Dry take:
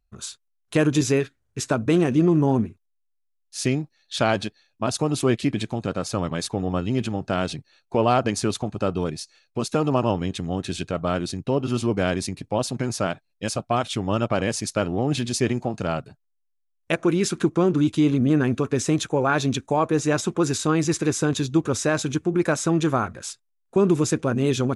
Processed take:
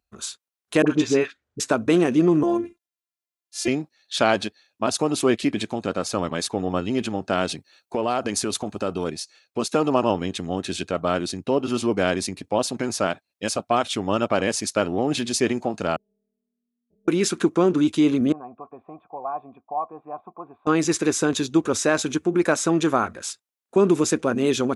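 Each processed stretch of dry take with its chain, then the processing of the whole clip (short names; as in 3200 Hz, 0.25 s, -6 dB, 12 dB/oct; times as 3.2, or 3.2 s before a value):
0.82–1.6 air absorption 90 m + dispersion highs, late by 49 ms, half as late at 720 Hz
2.43–3.68 HPF 58 Hz + robotiser 344 Hz
7.49–9.07 high shelf 9100 Hz +8 dB + compressor 4:1, threshold -21 dBFS
15.96–17.08 inverse Chebyshev low-pass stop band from 950 Hz, stop band 60 dB + resonator 200 Hz, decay 1.5 s, mix 100% + AM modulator 240 Hz, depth 95%
18.32–20.67 vocal tract filter a + bell 160 Hz +6.5 dB 1.6 oct
whole clip: HPF 100 Hz; bell 130 Hz -11 dB 0.8 oct; gain +2.5 dB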